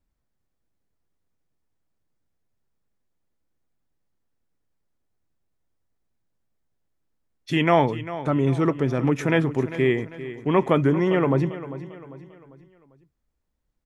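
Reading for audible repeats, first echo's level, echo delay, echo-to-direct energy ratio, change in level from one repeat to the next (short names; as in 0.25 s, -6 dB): 3, -14.0 dB, 0.397 s, -13.0 dB, -7.5 dB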